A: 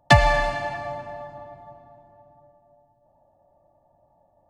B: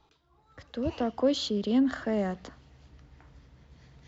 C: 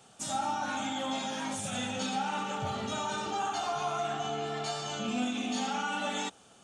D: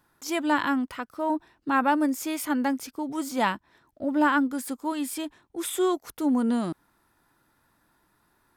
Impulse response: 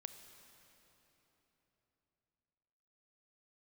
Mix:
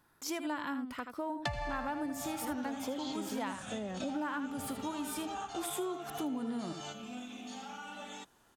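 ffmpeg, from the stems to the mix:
-filter_complex "[0:a]adelay=1350,volume=-7dB,asplit=2[link_01][link_02];[link_02]volume=-12.5dB[link_03];[1:a]adelay=1650,volume=-7dB[link_04];[2:a]adelay=1950,volume=-5.5dB[link_05];[3:a]volume=-2.5dB,asplit=3[link_06][link_07][link_08];[link_07]volume=-9.5dB[link_09];[link_08]apad=whole_len=378795[link_10];[link_05][link_10]sidechaingate=range=-7dB:threshold=-58dB:ratio=16:detection=peak[link_11];[link_03][link_09]amix=inputs=2:normalize=0,aecho=0:1:79:1[link_12];[link_01][link_04][link_11][link_06][link_12]amix=inputs=5:normalize=0,acompressor=threshold=-35dB:ratio=5"

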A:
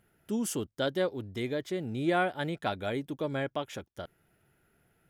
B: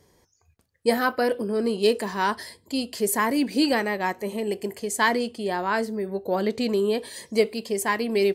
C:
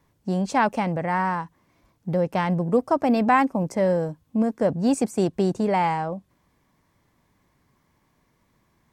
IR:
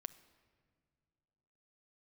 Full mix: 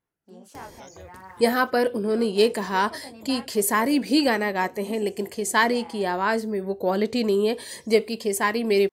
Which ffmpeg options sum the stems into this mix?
-filter_complex "[0:a]volume=-19.5dB[link_01];[1:a]acompressor=mode=upward:threshold=-36dB:ratio=2.5,adelay=550,volume=1.5dB[link_02];[2:a]highpass=frequency=240:width=0.5412,highpass=frequency=240:width=1.3066,flanger=delay=18.5:depth=7.6:speed=0.63,volume=-17.5dB[link_03];[link_01][link_02][link_03]amix=inputs=3:normalize=0"

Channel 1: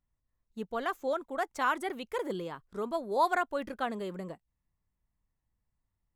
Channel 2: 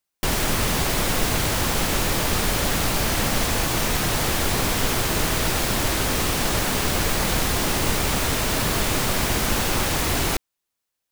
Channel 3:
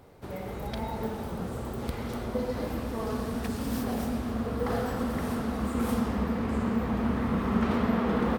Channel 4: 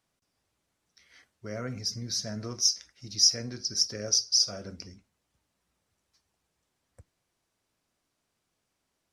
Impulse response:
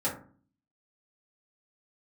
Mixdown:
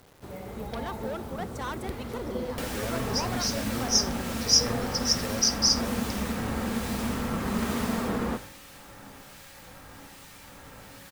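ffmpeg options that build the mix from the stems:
-filter_complex "[0:a]asoftclip=type=tanh:threshold=-31dB,volume=-0.5dB[link_01];[1:a]acrossover=split=840|2400|7400[link_02][link_03][link_04][link_05];[link_02]acompressor=threshold=-39dB:ratio=4[link_06];[link_03]acompressor=threshold=-40dB:ratio=4[link_07];[link_04]acompressor=threshold=-44dB:ratio=4[link_08];[link_05]acompressor=threshold=-43dB:ratio=4[link_09];[link_06][link_07][link_08][link_09]amix=inputs=4:normalize=0,acrossover=split=1800[link_10][link_11];[link_10]aeval=exprs='val(0)*(1-0.5/2+0.5/2*cos(2*PI*1.2*n/s))':channel_layout=same[link_12];[link_11]aeval=exprs='val(0)*(1-0.5/2-0.5/2*cos(2*PI*1.2*n/s))':channel_layout=same[link_13];[link_12][link_13]amix=inputs=2:normalize=0,adelay=2350,volume=-5.5dB,afade=type=out:start_time=8.01:duration=0.51:silence=0.266073,asplit=2[link_14][link_15];[link_15]volume=-4dB[link_16];[2:a]volume=-3dB[link_17];[3:a]adelay=1300,volume=1dB[link_18];[4:a]atrim=start_sample=2205[link_19];[link_16][link_19]afir=irnorm=-1:irlink=0[link_20];[link_01][link_14][link_17][link_18][link_20]amix=inputs=5:normalize=0,acrusher=bits=8:mix=0:aa=0.000001"

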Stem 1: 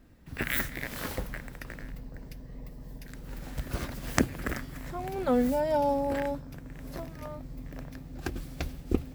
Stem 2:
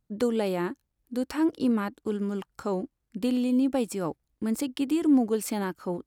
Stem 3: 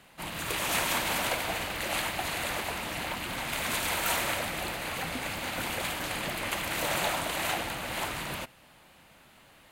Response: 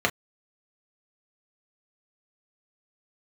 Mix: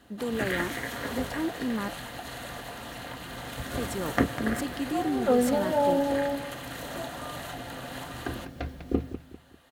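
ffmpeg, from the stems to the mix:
-filter_complex "[0:a]acrossover=split=4000[link_01][link_02];[link_02]acompressor=threshold=-59dB:ratio=4:attack=1:release=60[link_03];[link_01][link_03]amix=inputs=2:normalize=0,volume=-5dB,asplit=3[link_04][link_05][link_06];[link_05]volume=-9.5dB[link_07];[link_06]volume=-6dB[link_08];[1:a]alimiter=limit=-21.5dB:level=0:latency=1,volume=-2.5dB,asplit=3[link_09][link_10][link_11];[link_09]atrim=end=2.04,asetpts=PTS-STARTPTS,afade=type=out:start_time=2.036:duration=0.004:curve=hsin[link_12];[link_10]atrim=start=2.04:end=3.77,asetpts=PTS-STARTPTS,volume=0[link_13];[link_11]atrim=start=3.77,asetpts=PTS-STARTPTS,afade=type=in:duration=0.004:curve=hsin[link_14];[link_12][link_13][link_14]concat=n=3:v=0:a=1[link_15];[2:a]acompressor=threshold=-33dB:ratio=6,volume=-6dB,asplit=2[link_16][link_17];[link_17]volume=-15dB[link_18];[3:a]atrim=start_sample=2205[link_19];[link_07][link_18]amix=inputs=2:normalize=0[link_20];[link_20][link_19]afir=irnorm=-1:irlink=0[link_21];[link_08]aecho=0:1:199|398|597|796|995:1|0.36|0.13|0.0467|0.0168[link_22];[link_04][link_15][link_16][link_21][link_22]amix=inputs=5:normalize=0,highpass=55"

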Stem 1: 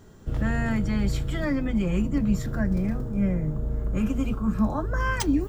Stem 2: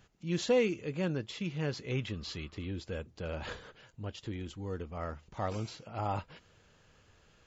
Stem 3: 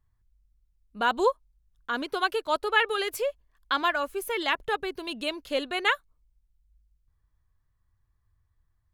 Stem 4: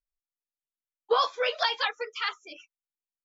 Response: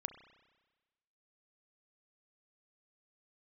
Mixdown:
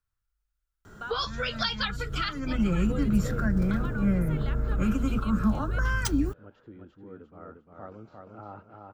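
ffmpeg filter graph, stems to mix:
-filter_complex "[0:a]adelay=850,volume=0dB[link_01];[1:a]acontrast=36,bandpass=frequency=320:width_type=q:width=0.76:csg=0,adelay=2400,volume=-11.5dB,asplit=2[link_02][link_03];[link_03]volume=-4dB[link_04];[2:a]acompressor=threshold=-28dB:ratio=6,volume=-15dB[link_05];[3:a]volume=1.5dB,asplit=2[link_06][link_07];[link_07]apad=whole_len=279243[link_08];[link_01][link_08]sidechaincompress=threshold=-36dB:ratio=10:attack=33:release=300[link_09];[link_04]aecho=0:1:351|702|1053|1404:1|0.31|0.0961|0.0298[link_10];[link_09][link_02][link_05][link_06][link_10]amix=inputs=5:normalize=0,equalizer=frequency=1400:width=3.2:gain=13.5,acrossover=split=270|3000[link_11][link_12][link_13];[link_12]acompressor=threshold=-32dB:ratio=6[link_14];[link_11][link_14][link_13]amix=inputs=3:normalize=0"

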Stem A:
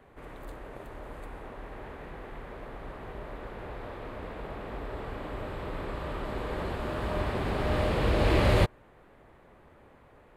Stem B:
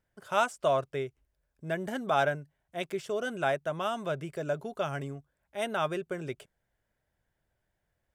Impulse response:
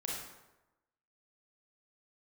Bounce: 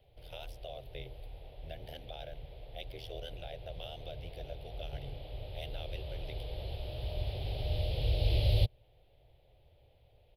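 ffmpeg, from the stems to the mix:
-filter_complex "[0:a]equalizer=frequency=1800:width=1.9:gain=-8.5,volume=-2dB[link_01];[1:a]bandreject=frequency=50:width_type=h:width=6,bandreject=frequency=100:width_type=h:width=6,bandreject=frequency=150:width_type=h:width=6,bandreject=frequency=200:width_type=h:width=6,bandreject=frequency=250:width_type=h:width=6,bandreject=frequency=300:width_type=h:width=6,bandreject=frequency=350:width_type=h:width=6,bandreject=frequency=400:width_type=h:width=6,alimiter=level_in=1dB:limit=-24dB:level=0:latency=1:release=122,volume=-1dB,tremolo=f=79:d=1,volume=1.5dB[link_02];[link_01][link_02]amix=inputs=2:normalize=0,firequalizer=gain_entry='entry(120,0);entry(200,-22);entry(530,-6);entry(750,-8);entry(1100,-27);entry(2100,-7);entry(3200,4);entry(5000,-1);entry(7300,-27);entry(11000,-1)':delay=0.05:min_phase=1,acrossover=split=490|3000[link_03][link_04][link_05];[link_04]acompressor=threshold=-47dB:ratio=2[link_06];[link_03][link_06][link_05]amix=inputs=3:normalize=0"

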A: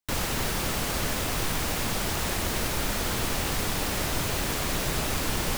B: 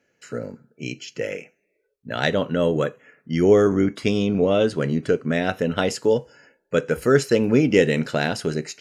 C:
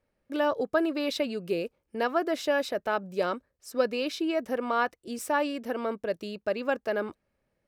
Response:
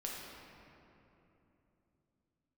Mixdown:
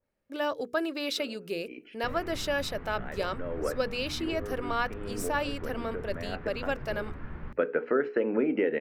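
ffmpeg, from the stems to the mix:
-filter_complex "[0:a]lowpass=frequency=1600:width=0.5412,lowpass=frequency=1600:width=1.3066,equalizer=frequency=670:width_type=o:width=2.2:gain=-12,flanger=delay=8.9:depth=5.6:regen=-35:speed=0.29:shape=triangular,adelay=1950,volume=-3.5dB[link_01];[1:a]highpass=frequency=260:width=0.5412,highpass=frequency=260:width=1.3066,acompressor=threshold=-22dB:ratio=6,lowpass=frequency=2100:width=0.5412,lowpass=frequency=2100:width=1.3066,adelay=850,volume=0dB[link_02];[2:a]adynamicequalizer=threshold=0.00891:dfrequency=1700:dqfactor=0.7:tfrequency=1700:tqfactor=0.7:attack=5:release=100:ratio=0.375:range=3.5:mode=boostabove:tftype=highshelf,volume=-4.5dB,asplit=2[link_03][link_04];[link_04]apad=whole_len=425663[link_05];[link_02][link_05]sidechaincompress=threshold=-43dB:ratio=8:attack=11:release=390[link_06];[link_01][link_06][link_03]amix=inputs=3:normalize=0,bandreject=frequency=60:width_type=h:width=6,bandreject=frequency=120:width_type=h:width=6,bandreject=frequency=180:width_type=h:width=6,bandreject=frequency=240:width_type=h:width=6,bandreject=frequency=300:width_type=h:width=6,bandreject=frequency=360:width_type=h:width=6,bandreject=frequency=420:width_type=h:width=6,bandreject=frequency=480:width_type=h:width=6"

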